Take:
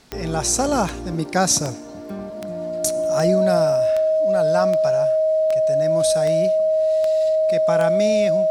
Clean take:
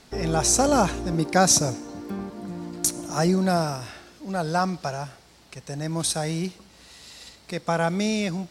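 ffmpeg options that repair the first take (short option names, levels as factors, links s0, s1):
-af "adeclick=t=4,bandreject=f=630:w=30"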